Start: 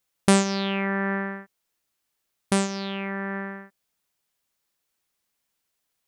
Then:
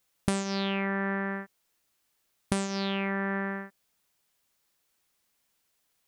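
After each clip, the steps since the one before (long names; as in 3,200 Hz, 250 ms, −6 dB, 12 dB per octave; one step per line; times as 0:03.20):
downward compressor 10 to 1, threshold −29 dBFS, peak gain reduction 16 dB
level +3.5 dB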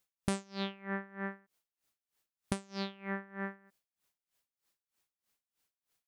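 tremolo with a sine in dB 3.2 Hz, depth 23 dB
level −4 dB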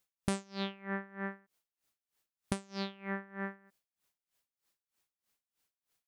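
no processing that can be heard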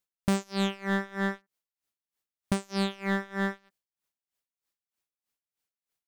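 leveller curve on the samples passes 3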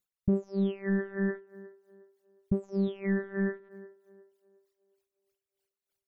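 spectral envelope exaggerated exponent 3
feedback echo with a band-pass in the loop 360 ms, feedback 44%, band-pass 570 Hz, level −15 dB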